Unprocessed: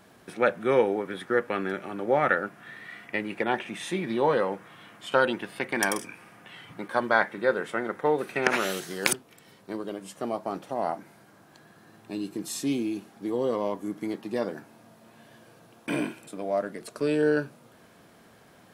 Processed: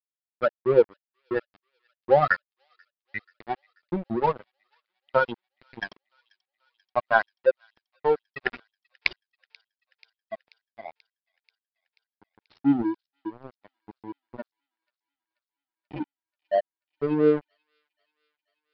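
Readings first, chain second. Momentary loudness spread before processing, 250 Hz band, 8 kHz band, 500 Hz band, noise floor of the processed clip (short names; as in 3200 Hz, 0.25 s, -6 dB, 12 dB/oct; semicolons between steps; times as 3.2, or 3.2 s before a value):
15 LU, -0.5 dB, under -30 dB, +0.5 dB, under -85 dBFS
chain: per-bin expansion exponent 3; in parallel at +0.5 dB: vocal rider within 4 dB 2 s; on the sum: crossover distortion -30.5 dBFS; downsampling 11025 Hz; high shelf 2300 Hz -11.5 dB; on a send: thin delay 0.485 s, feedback 68%, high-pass 3900 Hz, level -20 dB; on the sum: gain +4.5 dB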